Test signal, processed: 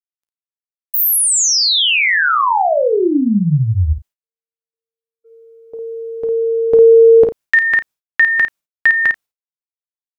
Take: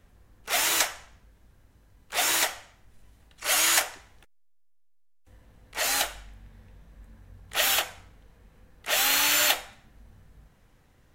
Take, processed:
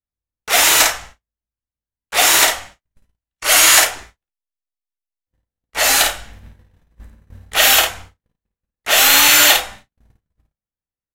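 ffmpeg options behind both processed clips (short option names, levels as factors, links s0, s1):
-filter_complex "[0:a]agate=range=0.00398:threshold=0.00447:ratio=16:detection=peak,asplit=2[s0][s1];[s1]adelay=34,volume=0.211[s2];[s0][s2]amix=inputs=2:normalize=0,asplit=2[s3][s4];[s4]aecho=0:1:14|53:0.237|0.562[s5];[s3][s5]amix=inputs=2:normalize=0,apsyclip=4.22,volume=0.841"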